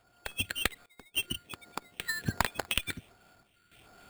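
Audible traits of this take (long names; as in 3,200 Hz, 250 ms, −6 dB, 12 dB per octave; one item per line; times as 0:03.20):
phaser sweep stages 4, 1.3 Hz, lowest notch 740–4,900 Hz
sample-and-hold tremolo, depth 95%
aliases and images of a low sample rate 5,900 Hz, jitter 0%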